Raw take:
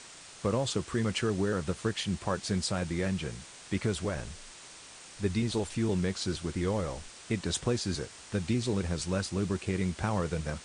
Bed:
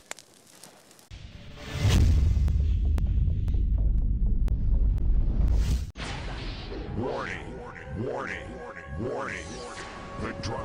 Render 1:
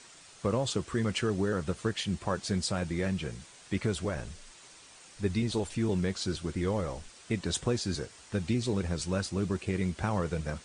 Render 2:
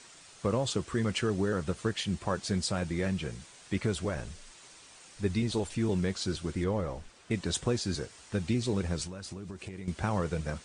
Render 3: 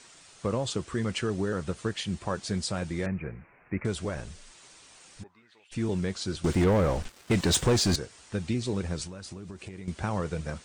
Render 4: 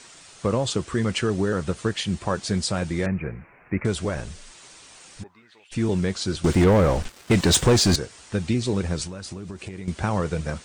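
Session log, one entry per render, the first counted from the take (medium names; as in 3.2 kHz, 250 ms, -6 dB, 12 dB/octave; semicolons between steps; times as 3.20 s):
noise reduction 6 dB, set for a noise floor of -50 dBFS
6.64–7.31 s: treble shelf 3.4 kHz -9.5 dB; 9.06–9.88 s: compression 16:1, threshold -36 dBFS
3.06–3.85 s: steep low-pass 2.5 kHz 96 dB/octave; 5.22–5.71 s: band-pass filter 740 Hz -> 3.1 kHz, Q 8.6; 6.44–7.96 s: waveshaping leveller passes 3
trim +6 dB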